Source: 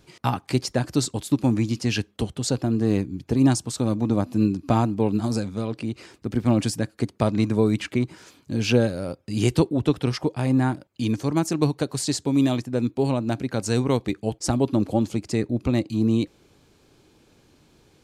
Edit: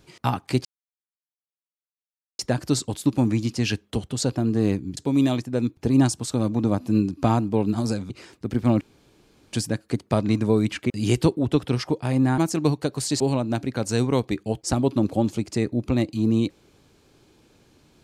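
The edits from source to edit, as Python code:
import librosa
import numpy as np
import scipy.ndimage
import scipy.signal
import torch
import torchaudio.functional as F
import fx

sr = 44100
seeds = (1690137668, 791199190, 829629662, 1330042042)

y = fx.edit(x, sr, fx.insert_silence(at_s=0.65, length_s=1.74),
    fx.cut(start_s=5.56, length_s=0.35),
    fx.insert_room_tone(at_s=6.62, length_s=0.72),
    fx.cut(start_s=7.99, length_s=1.25),
    fx.cut(start_s=10.72, length_s=0.63),
    fx.move(start_s=12.17, length_s=0.8, to_s=3.23), tone=tone)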